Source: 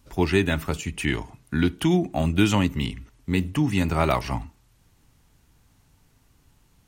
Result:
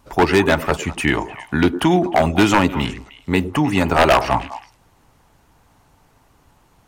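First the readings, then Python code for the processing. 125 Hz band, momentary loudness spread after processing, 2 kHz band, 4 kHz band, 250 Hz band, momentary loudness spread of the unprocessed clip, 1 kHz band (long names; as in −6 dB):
+1.5 dB, 10 LU, +9.0 dB, +6.5 dB, +5.0 dB, 10 LU, +12.0 dB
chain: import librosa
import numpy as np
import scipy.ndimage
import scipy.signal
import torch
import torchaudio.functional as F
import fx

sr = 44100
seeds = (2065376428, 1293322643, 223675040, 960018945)

y = fx.peak_eq(x, sr, hz=800.0, db=12.0, octaves=2.2)
y = fx.hpss(y, sr, part='percussive', gain_db=4)
y = 10.0 ** (-5.5 / 20.0) * (np.abs((y / 10.0 ** (-5.5 / 20.0) + 3.0) % 4.0 - 2.0) - 1.0)
y = fx.echo_stepped(y, sr, ms=103, hz=350.0, octaves=1.4, feedback_pct=70, wet_db=-9)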